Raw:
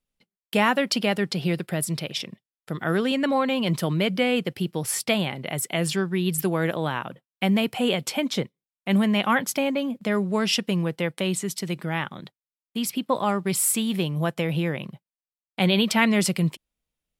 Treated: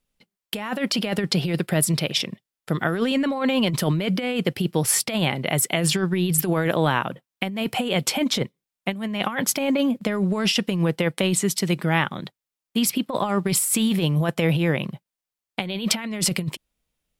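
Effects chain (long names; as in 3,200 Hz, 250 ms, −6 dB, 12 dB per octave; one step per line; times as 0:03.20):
compressor whose output falls as the input rises −25 dBFS, ratio −0.5
level +4 dB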